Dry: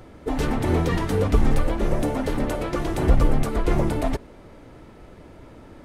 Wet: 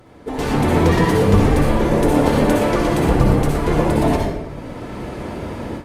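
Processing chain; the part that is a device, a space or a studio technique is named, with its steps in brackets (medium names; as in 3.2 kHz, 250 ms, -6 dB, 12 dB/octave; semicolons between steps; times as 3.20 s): far-field microphone of a smart speaker (reverberation RT60 0.85 s, pre-delay 54 ms, DRR -2 dB; high-pass 89 Hz 6 dB/octave; level rider gain up to 15.5 dB; trim -1 dB; Opus 48 kbps 48 kHz)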